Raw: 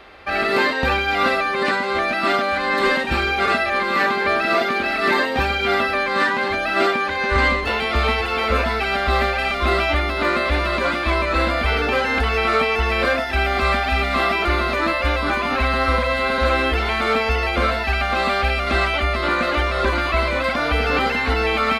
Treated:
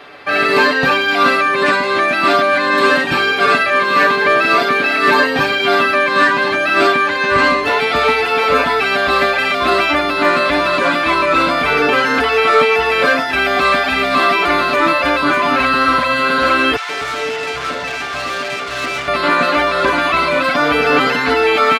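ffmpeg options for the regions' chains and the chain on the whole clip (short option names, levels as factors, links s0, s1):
-filter_complex "[0:a]asettb=1/sr,asplit=3[s0][s1][s2];[s0]atrim=end=16.764[s3];[s1]atrim=start=16.76:end=19.08,asetpts=PTS-STARTPTS,afade=t=in:d=0.004:c=qsin,afade=t=out:st=2.316:d=0.004:c=qsin,highshelf=f=8200:g=-10,aeval=exprs='(tanh(14.1*val(0)+0.65)-tanh(0.65))/14.1':c=same,acrossover=split=180|810[s4][s5][s6];[s5]adelay=130[s7];[s4]adelay=250[s8];[s8][s7][s6]amix=inputs=3:normalize=0,atrim=end_sample=102312[s9];[s2]atrim=start=19.076[s10];[s3][s9]acrossfade=d=0.004:c1=hsin:c2=qsin[s11];[s11][s10]acrossfade=d=0.004:c1=qsin:c2=hsin,highpass=120,aecho=1:1:6.9:0.77,acontrast=21"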